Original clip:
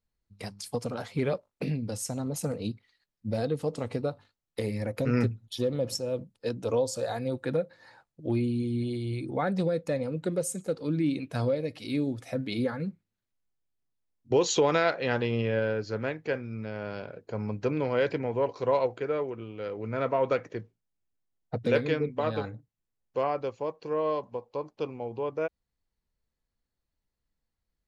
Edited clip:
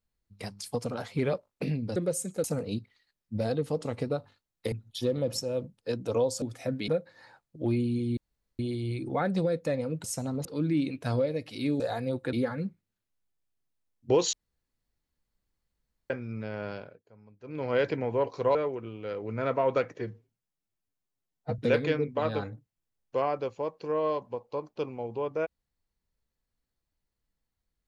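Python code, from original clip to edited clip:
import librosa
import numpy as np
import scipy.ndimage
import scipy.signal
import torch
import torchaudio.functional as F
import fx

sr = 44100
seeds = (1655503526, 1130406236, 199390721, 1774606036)

y = fx.edit(x, sr, fx.swap(start_s=1.96, length_s=0.41, other_s=10.26, other_length_s=0.48),
    fx.cut(start_s=4.65, length_s=0.64),
    fx.swap(start_s=6.99, length_s=0.53, other_s=12.09, other_length_s=0.46),
    fx.insert_room_tone(at_s=8.81, length_s=0.42),
    fx.room_tone_fill(start_s=14.55, length_s=1.77),
    fx.fade_down_up(start_s=16.92, length_s=1.06, db=-23.0, fade_s=0.33),
    fx.cut(start_s=18.77, length_s=0.33),
    fx.stretch_span(start_s=20.53, length_s=1.07, factor=1.5), tone=tone)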